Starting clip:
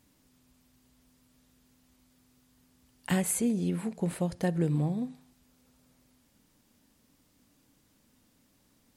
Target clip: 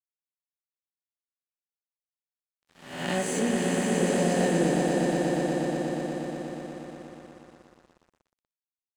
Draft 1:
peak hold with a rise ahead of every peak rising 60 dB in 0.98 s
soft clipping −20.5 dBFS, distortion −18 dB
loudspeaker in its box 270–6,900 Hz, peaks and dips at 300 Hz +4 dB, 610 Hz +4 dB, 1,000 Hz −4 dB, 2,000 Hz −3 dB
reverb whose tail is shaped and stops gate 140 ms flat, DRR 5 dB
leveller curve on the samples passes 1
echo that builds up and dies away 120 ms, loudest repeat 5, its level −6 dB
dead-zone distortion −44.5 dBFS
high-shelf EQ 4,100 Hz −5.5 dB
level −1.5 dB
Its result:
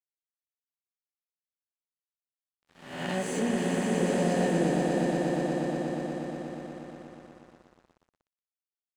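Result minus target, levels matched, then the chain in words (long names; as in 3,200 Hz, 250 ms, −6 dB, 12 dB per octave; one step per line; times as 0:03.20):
soft clipping: distortion +19 dB; 8,000 Hz band −4.0 dB
peak hold with a rise ahead of every peak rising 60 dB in 0.98 s
soft clipping −9 dBFS, distortion −37 dB
loudspeaker in its box 270–6,900 Hz, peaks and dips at 300 Hz +4 dB, 610 Hz +4 dB, 1,000 Hz −4 dB, 2,000 Hz −3 dB
reverb whose tail is shaped and stops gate 140 ms flat, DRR 5 dB
leveller curve on the samples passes 1
echo that builds up and dies away 120 ms, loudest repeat 5, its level −6 dB
dead-zone distortion −44.5 dBFS
level −1.5 dB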